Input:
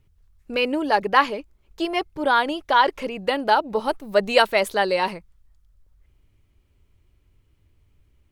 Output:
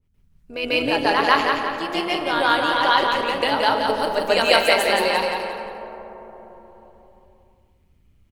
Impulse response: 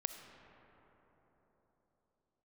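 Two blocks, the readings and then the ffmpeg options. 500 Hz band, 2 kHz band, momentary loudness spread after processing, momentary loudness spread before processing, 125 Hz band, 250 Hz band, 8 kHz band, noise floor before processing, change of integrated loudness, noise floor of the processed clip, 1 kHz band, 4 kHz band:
+1.5 dB, +3.5 dB, 14 LU, 9 LU, no reading, +1.0 dB, +7.0 dB, -63 dBFS, +2.0 dB, -60 dBFS, +1.5 dB, +6.0 dB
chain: -filter_complex "[0:a]equalizer=f=160:w=4.7:g=-12.5,bandreject=f=105.8:t=h:w=4,bandreject=f=211.6:t=h:w=4,bandreject=f=317.4:t=h:w=4,bandreject=f=423.2:t=h:w=4,bandreject=f=529:t=h:w=4,bandreject=f=634.8:t=h:w=4,bandreject=f=740.6:t=h:w=4,bandreject=f=846.4:t=h:w=4,bandreject=f=952.2:t=h:w=4,bandreject=f=1058:t=h:w=4,bandreject=f=1163.8:t=h:w=4,bandreject=f=1269.6:t=h:w=4,bandreject=f=1375.4:t=h:w=4,bandreject=f=1481.2:t=h:w=4,bandreject=f=1587:t=h:w=4,bandreject=f=1692.8:t=h:w=4,bandreject=f=1798.6:t=h:w=4,bandreject=f=1904.4:t=h:w=4,bandreject=f=2010.2:t=h:w=4,bandreject=f=2116:t=h:w=4,bandreject=f=2221.8:t=h:w=4,bandreject=f=2327.6:t=h:w=4,bandreject=f=2433.4:t=h:w=4,bandreject=f=2539.2:t=h:w=4,bandreject=f=2645:t=h:w=4,bandreject=f=2750.8:t=h:w=4,bandreject=f=2856.6:t=h:w=4,bandreject=f=2962.4:t=h:w=4,bandreject=f=3068.2:t=h:w=4,bandreject=f=3174:t=h:w=4,bandreject=f=3279.8:t=h:w=4,bandreject=f=3385.6:t=h:w=4,bandreject=f=3491.4:t=h:w=4,bandreject=f=3597.2:t=h:w=4,bandreject=f=3703:t=h:w=4,bandreject=f=3808.8:t=h:w=4,bandreject=f=3914.6:t=h:w=4,tremolo=f=160:d=0.571,aecho=1:1:175|350|525|700|875:0.562|0.219|0.0855|0.0334|0.013,asplit=2[s0][s1];[1:a]atrim=start_sample=2205,adelay=143[s2];[s1][s2]afir=irnorm=-1:irlink=0,volume=2[s3];[s0][s3]amix=inputs=2:normalize=0,adynamicequalizer=threshold=0.0316:dfrequency=1900:dqfactor=0.7:tfrequency=1900:tqfactor=0.7:attack=5:release=100:ratio=0.375:range=3:mode=boostabove:tftype=highshelf,volume=0.631"

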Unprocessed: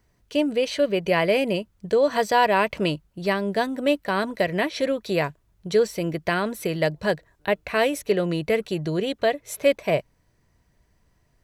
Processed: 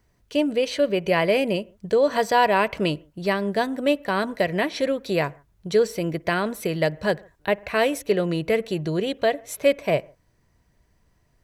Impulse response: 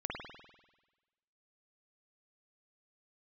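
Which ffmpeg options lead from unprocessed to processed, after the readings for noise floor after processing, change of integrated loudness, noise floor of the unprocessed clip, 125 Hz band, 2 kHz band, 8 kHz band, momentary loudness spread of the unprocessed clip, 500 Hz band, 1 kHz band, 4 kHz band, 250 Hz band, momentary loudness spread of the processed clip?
-65 dBFS, +0.5 dB, -66 dBFS, +0.5 dB, 0.0 dB, 0.0 dB, 7 LU, +0.5 dB, +0.5 dB, 0.0 dB, +0.5 dB, 6 LU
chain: -filter_complex "[0:a]asplit=2[s0][s1];[1:a]atrim=start_sample=2205,afade=t=out:st=0.21:d=0.01,atrim=end_sample=9702,lowpass=2100[s2];[s1][s2]afir=irnorm=-1:irlink=0,volume=0.075[s3];[s0][s3]amix=inputs=2:normalize=0"

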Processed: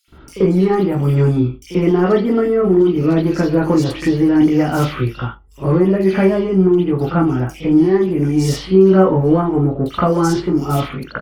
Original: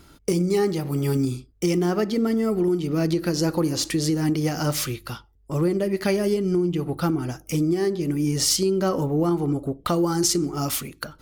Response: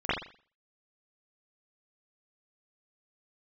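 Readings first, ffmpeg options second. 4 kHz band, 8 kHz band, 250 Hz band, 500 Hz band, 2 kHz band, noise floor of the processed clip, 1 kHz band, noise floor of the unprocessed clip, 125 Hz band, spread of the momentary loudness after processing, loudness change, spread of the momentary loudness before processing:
-3.0 dB, no reading, +9.0 dB, +9.0 dB, +7.0 dB, -41 dBFS, +9.0 dB, -55 dBFS, +9.0 dB, 6 LU, +8.0 dB, 6 LU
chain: -filter_complex "[0:a]asplit=2[s0][s1];[s1]asoftclip=type=hard:threshold=0.0891,volume=0.355[s2];[s0][s2]amix=inputs=2:normalize=0,acrossover=split=2600[s3][s4];[s3]adelay=80[s5];[s5][s4]amix=inputs=2:normalize=0[s6];[1:a]atrim=start_sample=2205,atrim=end_sample=3969[s7];[s6][s7]afir=irnorm=-1:irlink=0,volume=0.531"

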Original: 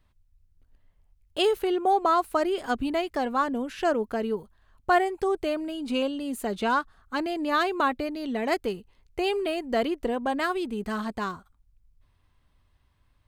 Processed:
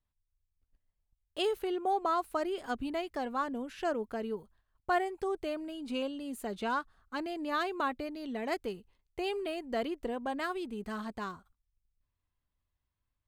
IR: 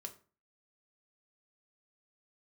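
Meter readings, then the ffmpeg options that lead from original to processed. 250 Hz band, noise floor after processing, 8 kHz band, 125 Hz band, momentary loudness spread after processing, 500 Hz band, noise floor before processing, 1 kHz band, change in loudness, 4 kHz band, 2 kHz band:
-8.0 dB, -85 dBFS, -8.0 dB, -8.0 dB, 8 LU, -8.0 dB, -66 dBFS, -8.0 dB, -8.0 dB, -8.0 dB, -8.0 dB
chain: -af "agate=range=0.282:threshold=0.00178:ratio=16:detection=peak,volume=0.398"

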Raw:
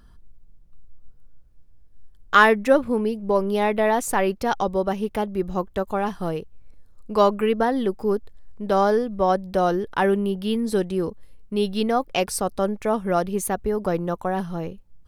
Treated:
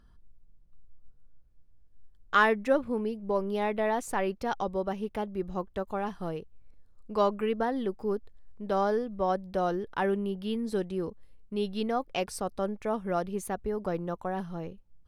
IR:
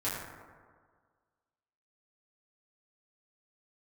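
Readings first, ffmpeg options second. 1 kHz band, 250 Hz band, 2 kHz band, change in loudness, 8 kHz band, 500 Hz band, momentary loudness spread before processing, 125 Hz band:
-8.0 dB, -8.0 dB, -8.5 dB, -8.0 dB, -12.0 dB, -8.0 dB, 8 LU, -8.0 dB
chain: -af "highshelf=f=8300:g=-8.5,volume=0.398"

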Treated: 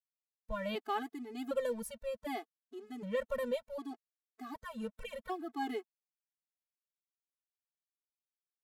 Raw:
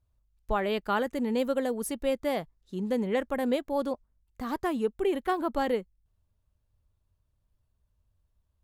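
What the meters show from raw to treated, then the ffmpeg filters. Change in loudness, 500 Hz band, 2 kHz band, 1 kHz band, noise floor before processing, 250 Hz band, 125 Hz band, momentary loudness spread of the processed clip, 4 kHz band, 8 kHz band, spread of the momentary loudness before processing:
-9.5 dB, -9.5 dB, -9.0 dB, -9.0 dB, -75 dBFS, -12.0 dB, under -10 dB, 12 LU, -8.0 dB, -9.5 dB, 7 LU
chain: -af "aeval=exprs='sgn(val(0))*max(abs(val(0))-0.00355,0)':c=same,tremolo=f=1.2:d=0.58,afftfilt=real='re*gt(sin(2*PI*0.66*pts/sr)*(1-2*mod(floor(b*sr/1024/220),2)),0)':imag='im*gt(sin(2*PI*0.66*pts/sr)*(1-2*mod(floor(b*sr/1024/220),2)),0)':win_size=1024:overlap=0.75,volume=0.75"

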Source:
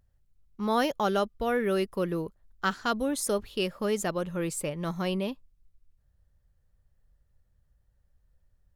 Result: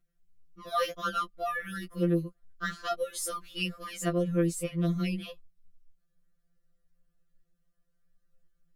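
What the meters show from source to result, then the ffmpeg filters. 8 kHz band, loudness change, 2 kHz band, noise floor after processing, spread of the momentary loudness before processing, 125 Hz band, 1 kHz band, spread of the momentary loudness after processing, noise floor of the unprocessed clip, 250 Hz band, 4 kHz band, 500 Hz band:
-2.5 dB, -2.0 dB, -2.0 dB, -76 dBFS, 6 LU, +4.0 dB, -3.0 dB, 9 LU, -70 dBFS, -1.0 dB, -2.5 dB, -5.0 dB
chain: -af "asuperstop=centerf=880:order=8:qfactor=2.8,afftfilt=real='re*2.83*eq(mod(b,8),0)':imag='im*2.83*eq(mod(b,8),0)':win_size=2048:overlap=0.75"

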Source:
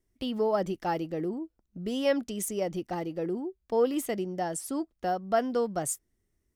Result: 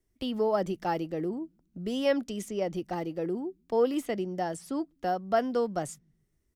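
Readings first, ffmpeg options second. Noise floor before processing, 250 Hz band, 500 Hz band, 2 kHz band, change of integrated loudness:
-78 dBFS, 0.0 dB, 0.0 dB, 0.0 dB, 0.0 dB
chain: -filter_complex "[0:a]acrossover=split=160|5500[s0][s1][s2];[s0]aecho=1:1:126|252|378|504:0.178|0.0836|0.0393|0.0185[s3];[s2]acompressor=threshold=0.00355:ratio=6[s4];[s3][s1][s4]amix=inputs=3:normalize=0"

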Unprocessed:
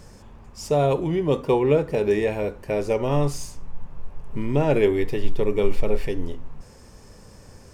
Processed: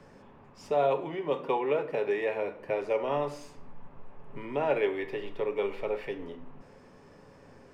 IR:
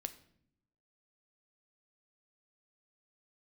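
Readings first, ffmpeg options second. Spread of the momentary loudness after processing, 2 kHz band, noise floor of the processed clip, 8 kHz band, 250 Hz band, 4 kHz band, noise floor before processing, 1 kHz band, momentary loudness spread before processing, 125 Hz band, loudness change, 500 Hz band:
12 LU, -3.5 dB, -55 dBFS, under -15 dB, -13.0 dB, -8.0 dB, -48 dBFS, -3.0 dB, 15 LU, -19.5 dB, -7.5 dB, -7.0 dB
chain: -filter_complex "[0:a]acrossover=split=160 3300:gain=0.158 1 0.126[s0][s1][s2];[s0][s1][s2]amix=inputs=3:normalize=0,acrossover=split=490|950[s3][s4][s5];[s3]acompressor=threshold=0.0112:ratio=5[s6];[s6][s4][s5]amix=inputs=3:normalize=0[s7];[1:a]atrim=start_sample=2205[s8];[s7][s8]afir=irnorm=-1:irlink=0"

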